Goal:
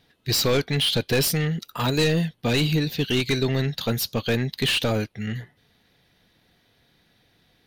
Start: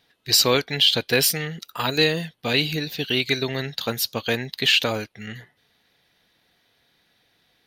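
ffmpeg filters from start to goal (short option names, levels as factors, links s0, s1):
-af "asoftclip=type=tanh:threshold=0.112,lowshelf=f=330:g=10.5"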